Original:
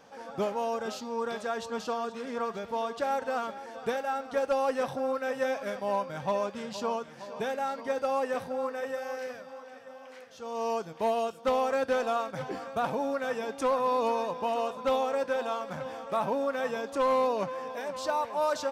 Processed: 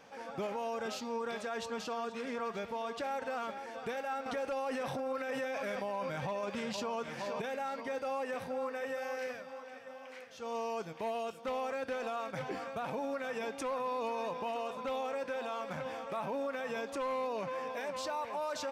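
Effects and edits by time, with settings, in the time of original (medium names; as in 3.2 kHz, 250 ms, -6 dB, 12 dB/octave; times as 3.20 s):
4.26–7.42 s: gain +7.5 dB
whole clip: peaking EQ 2.3 kHz +6 dB 0.66 oct; peak limiter -27.5 dBFS; trim -2 dB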